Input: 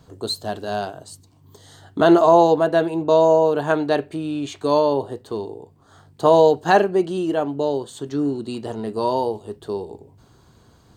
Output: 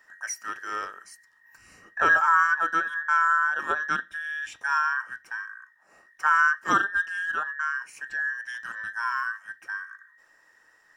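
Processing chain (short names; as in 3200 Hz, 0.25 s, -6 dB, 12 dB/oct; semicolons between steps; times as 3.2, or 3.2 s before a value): band inversion scrambler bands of 2000 Hz; 0.72–2.21 low shelf 360 Hz +7 dB; gain -7.5 dB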